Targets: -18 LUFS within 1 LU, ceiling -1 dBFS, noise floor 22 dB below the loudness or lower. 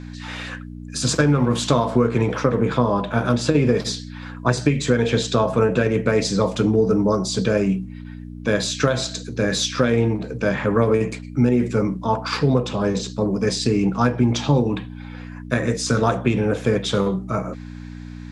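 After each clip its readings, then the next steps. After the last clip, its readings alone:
hum 60 Hz; harmonics up to 300 Hz; hum level -32 dBFS; loudness -20.5 LUFS; peak -2.0 dBFS; loudness target -18.0 LUFS
-> de-hum 60 Hz, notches 5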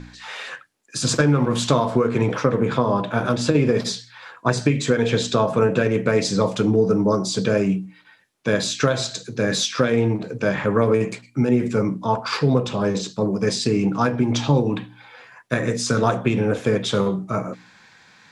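hum none; loudness -21.0 LUFS; peak -2.5 dBFS; loudness target -18.0 LUFS
-> gain +3 dB; limiter -1 dBFS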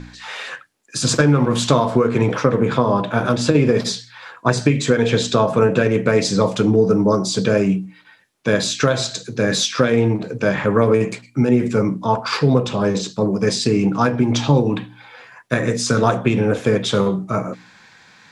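loudness -18.0 LUFS; peak -1.0 dBFS; noise floor -49 dBFS

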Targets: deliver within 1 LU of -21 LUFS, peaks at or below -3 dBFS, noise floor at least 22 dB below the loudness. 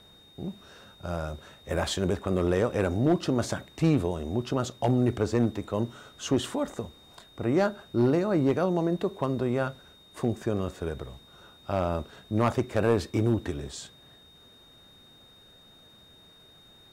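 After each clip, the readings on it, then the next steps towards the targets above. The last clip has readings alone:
clipped 0.4%; flat tops at -15.5 dBFS; steady tone 3700 Hz; tone level -54 dBFS; loudness -28.0 LUFS; peak -15.5 dBFS; loudness target -21.0 LUFS
-> clip repair -15.5 dBFS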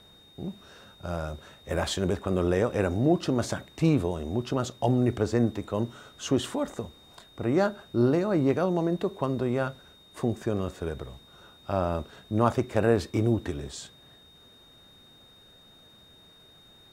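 clipped 0.0%; steady tone 3700 Hz; tone level -54 dBFS
-> notch 3700 Hz, Q 30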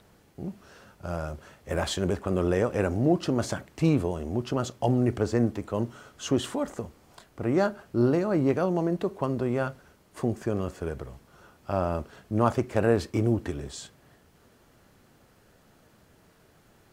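steady tone none; loudness -28.0 LUFS; peak -8.0 dBFS; loudness target -21.0 LUFS
-> gain +7 dB; limiter -3 dBFS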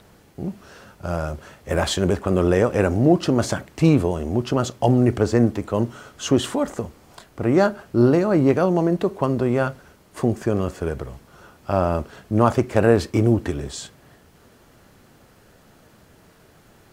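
loudness -21.0 LUFS; peak -3.0 dBFS; noise floor -53 dBFS

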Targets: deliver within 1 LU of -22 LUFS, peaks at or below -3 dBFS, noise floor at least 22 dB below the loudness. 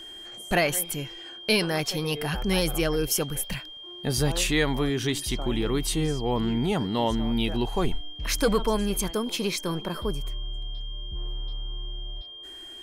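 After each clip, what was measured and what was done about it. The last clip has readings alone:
steady tone 3200 Hz; tone level -40 dBFS; loudness -27.5 LUFS; peak -10.5 dBFS; loudness target -22.0 LUFS
-> notch 3200 Hz, Q 30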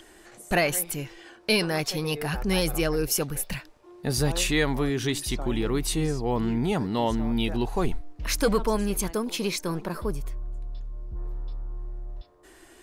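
steady tone none; loudness -27.0 LUFS; peak -11.0 dBFS; loudness target -22.0 LUFS
-> gain +5 dB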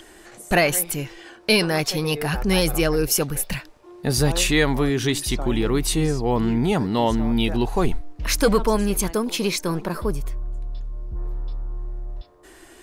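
loudness -22.0 LUFS; peak -6.0 dBFS; noise floor -48 dBFS

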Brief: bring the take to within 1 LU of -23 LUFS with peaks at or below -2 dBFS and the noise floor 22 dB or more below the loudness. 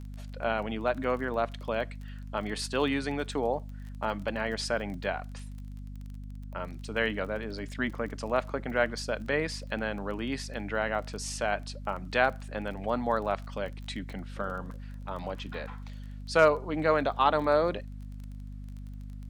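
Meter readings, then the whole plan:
ticks 23/s; hum 50 Hz; harmonics up to 250 Hz; hum level -38 dBFS; loudness -31.0 LUFS; peak -9.0 dBFS; loudness target -23.0 LUFS
-> de-click; de-hum 50 Hz, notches 5; gain +8 dB; limiter -2 dBFS

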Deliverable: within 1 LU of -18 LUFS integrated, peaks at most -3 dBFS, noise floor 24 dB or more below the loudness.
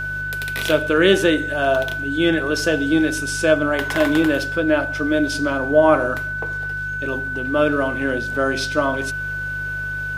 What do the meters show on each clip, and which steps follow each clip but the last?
hum 50 Hz; harmonics up to 150 Hz; hum level -32 dBFS; steady tone 1500 Hz; tone level -24 dBFS; loudness -19.5 LUFS; peak -2.5 dBFS; loudness target -18.0 LUFS
-> de-hum 50 Hz, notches 3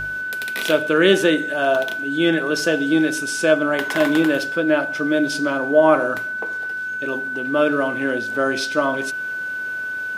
hum none; steady tone 1500 Hz; tone level -24 dBFS
-> notch 1500 Hz, Q 30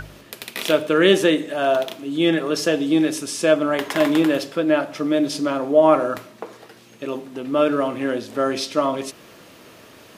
steady tone none; loudness -20.0 LUFS; peak -2.5 dBFS; loudness target -18.0 LUFS
-> gain +2 dB; limiter -3 dBFS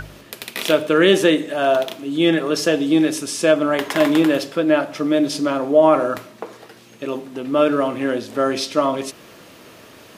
loudness -18.5 LUFS; peak -3.0 dBFS; noise floor -45 dBFS

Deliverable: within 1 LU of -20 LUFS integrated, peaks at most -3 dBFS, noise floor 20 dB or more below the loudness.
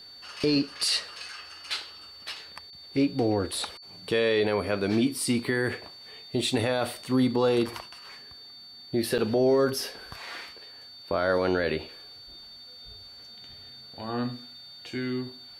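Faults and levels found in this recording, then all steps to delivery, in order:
dropouts 1; longest dropout 7.3 ms; steady tone 4500 Hz; tone level -45 dBFS; loudness -27.5 LUFS; peak -13.0 dBFS; loudness target -20.0 LUFS
-> interpolate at 9.18, 7.3 ms; notch 4500 Hz, Q 30; gain +7.5 dB

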